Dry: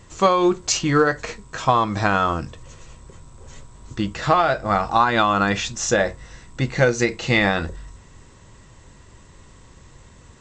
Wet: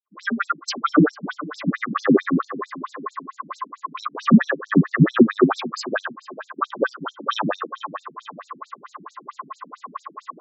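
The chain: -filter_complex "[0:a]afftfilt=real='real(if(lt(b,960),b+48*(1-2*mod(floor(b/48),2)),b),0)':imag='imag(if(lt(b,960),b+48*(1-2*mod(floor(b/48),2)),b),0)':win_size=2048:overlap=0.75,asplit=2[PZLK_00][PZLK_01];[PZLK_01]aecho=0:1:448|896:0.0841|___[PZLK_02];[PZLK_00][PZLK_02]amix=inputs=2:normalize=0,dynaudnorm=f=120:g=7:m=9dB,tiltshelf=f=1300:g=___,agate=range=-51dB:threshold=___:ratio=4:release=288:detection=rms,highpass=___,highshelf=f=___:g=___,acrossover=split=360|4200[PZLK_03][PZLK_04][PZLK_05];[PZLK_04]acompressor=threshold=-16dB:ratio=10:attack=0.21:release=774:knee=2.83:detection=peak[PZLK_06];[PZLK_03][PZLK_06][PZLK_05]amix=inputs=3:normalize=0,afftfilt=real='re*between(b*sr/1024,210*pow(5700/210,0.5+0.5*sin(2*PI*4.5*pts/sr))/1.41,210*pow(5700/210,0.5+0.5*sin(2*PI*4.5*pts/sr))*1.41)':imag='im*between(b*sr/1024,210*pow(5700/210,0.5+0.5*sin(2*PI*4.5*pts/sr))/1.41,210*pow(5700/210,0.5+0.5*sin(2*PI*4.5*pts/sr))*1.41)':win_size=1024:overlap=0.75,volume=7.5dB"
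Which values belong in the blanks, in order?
0.0286, 7.5, -35dB, 70, 5400, -9.5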